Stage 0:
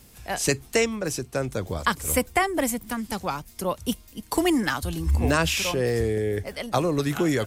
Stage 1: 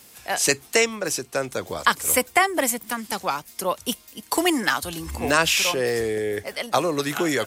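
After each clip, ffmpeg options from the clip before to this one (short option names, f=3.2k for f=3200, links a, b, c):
-af "highpass=f=590:p=1,volume=5.5dB"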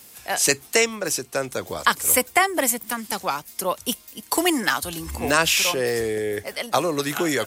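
-af "highshelf=f=9k:g=5"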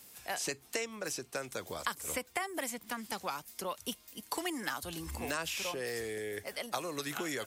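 -filter_complex "[0:a]acrossover=split=1200|6300[a][b][c];[a]acompressor=threshold=-29dB:ratio=4[d];[b]acompressor=threshold=-30dB:ratio=4[e];[c]acompressor=threshold=-37dB:ratio=4[f];[d][e][f]amix=inputs=3:normalize=0,volume=-8.5dB"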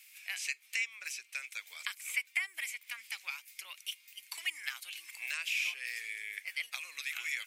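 -af "highpass=f=2.3k:t=q:w=6.3,volume=-4.5dB"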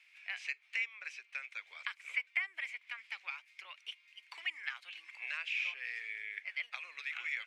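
-af "highpass=350,lowpass=2.3k,volume=1.5dB"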